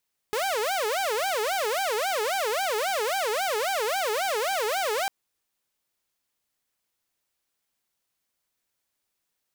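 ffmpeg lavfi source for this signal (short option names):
-f lavfi -i "aevalsrc='0.0794*(2*mod((605*t-187/(2*PI*3.7)*sin(2*PI*3.7*t)),1)-1)':d=4.75:s=44100"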